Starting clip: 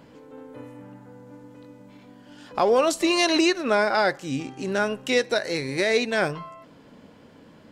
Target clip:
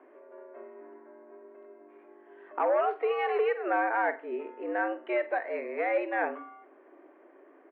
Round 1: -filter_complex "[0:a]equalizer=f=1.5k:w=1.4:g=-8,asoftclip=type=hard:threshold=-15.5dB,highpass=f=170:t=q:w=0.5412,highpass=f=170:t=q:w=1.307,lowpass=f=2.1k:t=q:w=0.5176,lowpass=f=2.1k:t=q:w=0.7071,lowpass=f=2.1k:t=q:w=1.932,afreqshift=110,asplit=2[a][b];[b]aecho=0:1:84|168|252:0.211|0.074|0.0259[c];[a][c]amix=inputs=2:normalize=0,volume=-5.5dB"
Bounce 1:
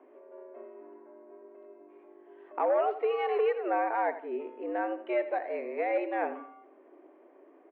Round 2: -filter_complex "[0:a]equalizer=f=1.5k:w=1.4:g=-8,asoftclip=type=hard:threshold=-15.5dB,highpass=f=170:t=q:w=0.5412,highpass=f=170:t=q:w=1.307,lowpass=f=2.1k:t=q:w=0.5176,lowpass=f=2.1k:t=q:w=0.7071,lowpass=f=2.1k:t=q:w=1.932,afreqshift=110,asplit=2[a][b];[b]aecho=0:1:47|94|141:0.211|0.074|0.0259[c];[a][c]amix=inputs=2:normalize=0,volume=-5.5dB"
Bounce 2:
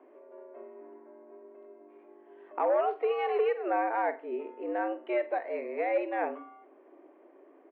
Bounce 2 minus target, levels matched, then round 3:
2000 Hz band -5.0 dB
-filter_complex "[0:a]asoftclip=type=hard:threshold=-15.5dB,highpass=f=170:t=q:w=0.5412,highpass=f=170:t=q:w=1.307,lowpass=f=2.1k:t=q:w=0.5176,lowpass=f=2.1k:t=q:w=0.7071,lowpass=f=2.1k:t=q:w=1.932,afreqshift=110,asplit=2[a][b];[b]aecho=0:1:47|94|141:0.211|0.074|0.0259[c];[a][c]amix=inputs=2:normalize=0,volume=-5.5dB"

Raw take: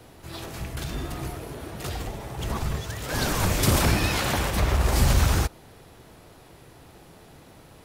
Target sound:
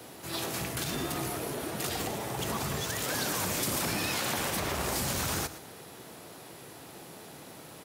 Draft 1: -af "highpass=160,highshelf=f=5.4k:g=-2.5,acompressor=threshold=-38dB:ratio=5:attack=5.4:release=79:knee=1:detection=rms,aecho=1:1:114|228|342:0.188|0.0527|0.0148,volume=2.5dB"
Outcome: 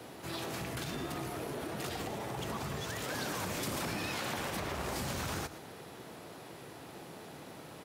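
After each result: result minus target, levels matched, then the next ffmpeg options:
compressor: peak gain reduction +4 dB; 8000 Hz band -3.0 dB
-af "highpass=160,highshelf=f=5.4k:g=-2.5,acompressor=threshold=-31.5dB:ratio=5:attack=5.4:release=79:knee=1:detection=rms,aecho=1:1:114|228|342:0.188|0.0527|0.0148,volume=2.5dB"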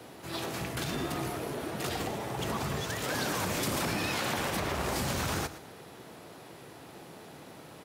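8000 Hz band -4.0 dB
-af "highpass=160,highshelf=f=5.4k:g=7,acompressor=threshold=-31.5dB:ratio=5:attack=5.4:release=79:knee=1:detection=rms,aecho=1:1:114|228|342:0.188|0.0527|0.0148,volume=2.5dB"

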